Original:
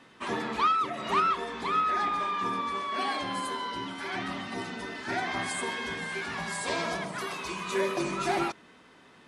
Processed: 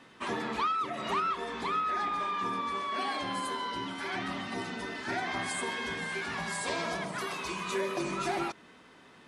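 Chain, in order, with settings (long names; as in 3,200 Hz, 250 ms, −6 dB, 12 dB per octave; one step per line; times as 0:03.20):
downward compressor 2 to 1, threshold −31 dBFS, peak gain reduction 6 dB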